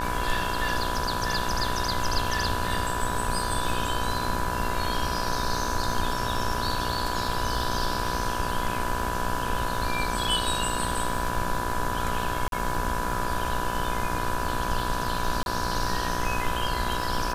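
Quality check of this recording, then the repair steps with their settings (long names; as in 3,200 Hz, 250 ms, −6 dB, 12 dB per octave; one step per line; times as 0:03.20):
mains buzz 60 Hz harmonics 29 −32 dBFS
surface crackle 29 per second −33 dBFS
whistle 990 Hz −31 dBFS
0:12.48–0:12.52: drop-out 42 ms
0:15.43–0:15.46: drop-out 31 ms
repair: click removal
hum removal 60 Hz, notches 29
notch filter 990 Hz, Q 30
repair the gap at 0:12.48, 42 ms
repair the gap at 0:15.43, 31 ms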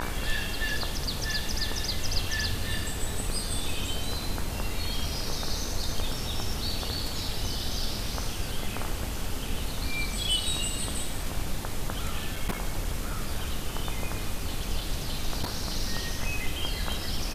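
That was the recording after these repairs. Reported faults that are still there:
none of them is left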